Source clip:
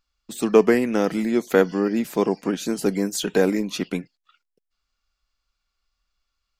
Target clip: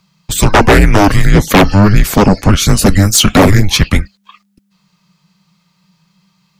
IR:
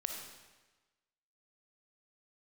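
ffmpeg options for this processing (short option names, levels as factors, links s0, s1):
-af "afreqshift=-200,aeval=exprs='0.75*sin(PI/2*5.62*val(0)/0.75)':c=same,volume=1.12"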